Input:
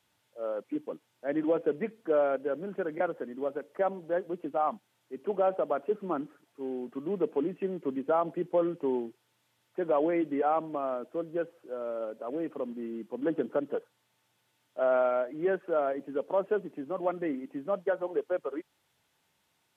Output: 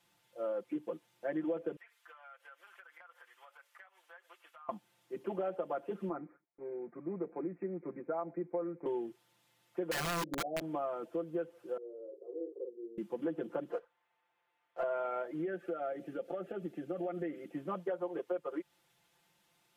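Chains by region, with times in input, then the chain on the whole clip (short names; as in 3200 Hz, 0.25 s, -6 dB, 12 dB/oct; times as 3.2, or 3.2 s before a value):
1.76–4.69 HPF 1100 Hz 24 dB/oct + compressor 16:1, threshold -52 dBFS
6.09–8.86 Chebyshev low-pass 2400 Hz, order 8 + gate with hold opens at -48 dBFS, closes at -51 dBFS + resonator 740 Hz, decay 0.22 s, mix 50%
9.91–10.61 steep low-pass 680 Hz 72 dB/oct + wrapped overs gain 24 dB
11.77–12.98 half-wave gain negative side -3 dB + Butterworth band-pass 420 Hz, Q 4.3 + doubler 48 ms -5.5 dB
13.71–14.83 three-band isolator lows -20 dB, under 450 Hz, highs -23 dB, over 2500 Hz + notch 600 Hz, Q 8 + sample leveller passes 1
15.41–17.53 compressor 2.5:1, threshold -35 dBFS + Butterworth band-stop 1000 Hz, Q 2.9
whole clip: comb 5.8 ms, depth 97%; compressor 4:1, threshold -32 dBFS; gain -2 dB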